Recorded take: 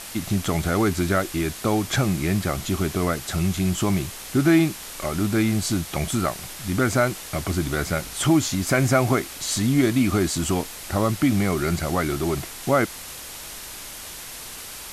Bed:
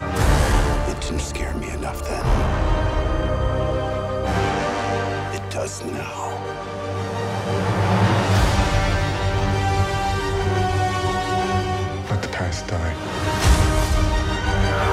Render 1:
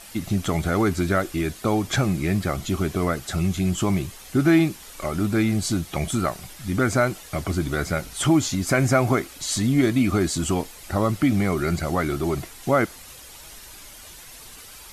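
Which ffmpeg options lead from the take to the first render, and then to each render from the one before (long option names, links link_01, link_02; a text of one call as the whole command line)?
ffmpeg -i in.wav -af "afftdn=noise_reduction=9:noise_floor=-38" out.wav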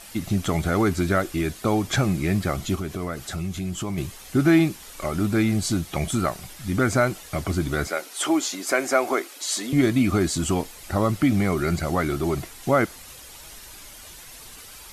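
ffmpeg -i in.wav -filter_complex "[0:a]asettb=1/sr,asplit=3[link_01][link_02][link_03];[link_01]atrim=end=2.754[link_04];[link_02]atrim=start=2.75:end=3.98,asetpts=PTS-STARTPTS,afade=type=in:duration=0.004:curve=qsin,afade=type=out:start_time=1.226:duration=0.004:curve=qsin,acompressor=threshold=-30dB:ratio=2:attack=3.2:release=140:knee=1:detection=peak[link_05];[link_03]atrim=start=3.976[link_06];[link_04][link_05]acrossfade=duration=0.004:curve1=hsin:curve2=qsin[link_07];[link_07][link_06]acrossfade=duration=0.004:curve1=qsin:curve2=hsin,asettb=1/sr,asplit=3[link_08][link_09][link_10];[link_08]atrim=end=7.874[link_11];[link_09]atrim=start=7.87:end=9.73,asetpts=PTS-STARTPTS,afade=type=in:duration=0.004:curve=qsin,afade=type=out:start_time=1.856:duration=0.004:curve=qsin,highpass=frequency=320:width=0.5412,highpass=frequency=320:width=1.3066[link_12];[link_10]atrim=start=9.726[link_13];[link_11][link_12]acrossfade=duration=0.004:curve1=hsin:curve2=qsin[link_14];[link_14][link_13]acrossfade=duration=0.004:curve1=qsin:curve2=hsin" out.wav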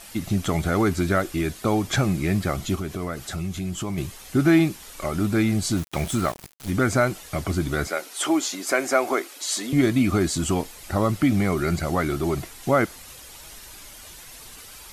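ffmpeg -i in.wav -filter_complex "[0:a]asettb=1/sr,asplit=3[link_01][link_02][link_03];[link_01]atrim=end=5.774[link_04];[link_02]atrim=start=5.77:end=6.71,asetpts=PTS-STARTPTS,afade=type=in:duration=0.004:curve=qsin,afade=type=out:start_time=0.936:duration=0.004:curve=qsin,aeval=exprs='val(0)*gte(abs(val(0)),0.0237)':channel_layout=same[link_05];[link_03]atrim=start=6.706[link_06];[link_04][link_05]acrossfade=duration=0.004:curve1=hsin:curve2=qsin[link_07];[link_07][link_06]acrossfade=duration=0.004:curve1=qsin:curve2=hsin" out.wav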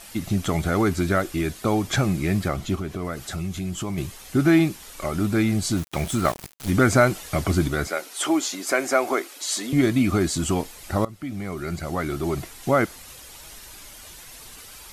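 ffmpeg -i in.wav -filter_complex "[0:a]asettb=1/sr,asplit=3[link_01][link_02][link_03];[link_01]atrim=end=2.484[link_04];[link_02]atrim=start=2.48:end=3.05,asetpts=PTS-STARTPTS,afade=type=in:duration=0.004:curve=qsin,afade=type=out:start_time=0.566:duration=0.004:curve=qsin,highshelf=frequency=4700:gain=-7[link_05];[link_03]atrim=start=3.046[link_06];[link_04][link_05]acrossfade=duration=0.004:curve1=hsin:curve2=qsin[link_07];[link_07][link_06]acrossfade=duration=0.004:curve1=qsin:curve2=hsin,asplit=4[link_08][link_09][link_10][link_11];[link_08]atrim=end=6.252[link_12];[link_09]atrim=start=6.248:end=7.682,asetpts=PTS-STARTPTS,volume=3.5dB[link_13];[link_10]atrim=start=7.678:end=11.05,asetpts=PTS-STARTPTS,afade=type=out:start_time=3.368:duration=0.004:curve=hsin:silence=0.105925[link_14];[link_11]atrim=start=11.05,asetpts=PTS-STARTPTS,afade=type=in:duration=1.45:silence=0.105925[link_15];[link_12][link_13]acrossfade=duration=0.004:curve1=hsin:curve2=hsin[link_16];[link_14][link_15]concat=n=2:v=0:a=1[link_17];[link_16][link_17]acrossfade=duration=0.004:curve1=hsin:curve2=hsin" out.wav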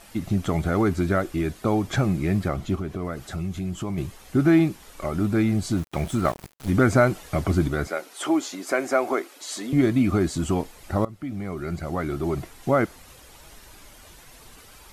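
ffmpeg -i in.wav -af "highshelf=frequency=2100:gain=-8.5" out.wav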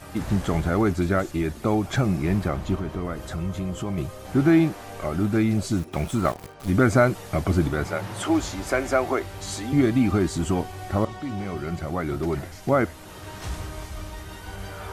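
ffmpeg -i in.wav -i bed.wav -filter_complex "[1:a]volume=-17dB[link_01];[0:a][link_01]amix=inputs=2:normalize=0" out.wav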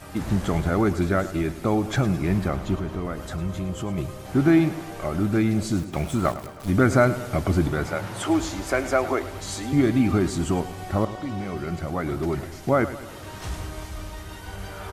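ffmpeg -i in.wav -af "aecho=1:1:106|212|318|424|530|636:0.188|0.105|0.0591|0.0331|0.0185|0.0104" out.wav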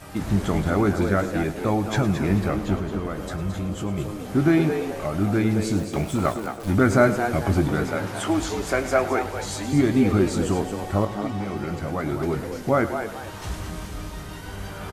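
ffmpeg -i in.wav -filter_complex "[0:a]asplit=2[link_01][link_02];[link_02]adelay=20,volume=-11dB[link_03];[link_01][link_03]amix=inputs=2:normalize=0,asplit=2[link_04][link_05];[link_05]asplit=4[link_06][link_07][link_08][link_09];[link_06]adelay=220,afreqshift=110,volume=-8.5dB[link_10];[link_07]adelay=440,afreqshift=220,volume=-18.7dB[link_11];[link_08]adelay=660,afreqshift=330,volume=-28.8dB[link_12];[link_09]adelay=880,afreqshift=440,volume=-39dB[link_13];[link_10][link_11][link_12][link_13]amix=inputs=4:normalize=0[link_14];[link_04][link_14]amix=inputs=2:normalize=0" out.wav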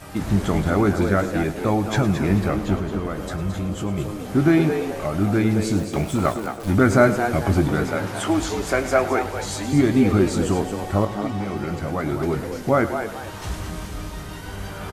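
ffmpeg -i in.wav -af "volume=2dB" out.wav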